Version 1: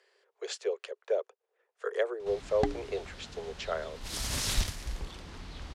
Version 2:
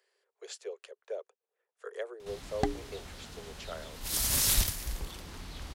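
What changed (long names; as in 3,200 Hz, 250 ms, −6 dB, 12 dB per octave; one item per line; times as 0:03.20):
speech −9.0 dB
master: remove high-frequency loss of the air 67 metres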